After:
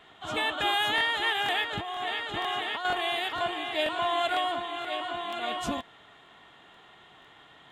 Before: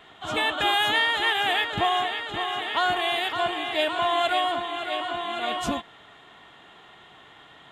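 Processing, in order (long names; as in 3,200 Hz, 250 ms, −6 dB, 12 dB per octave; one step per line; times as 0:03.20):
0:01.71–0:02.85: compressor whose output falls as the input rises −28 dBFS, ratio −1
regular buffer underruns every 0.48 s, samples 1,024, repeat, from 0:00.96
level −4 dB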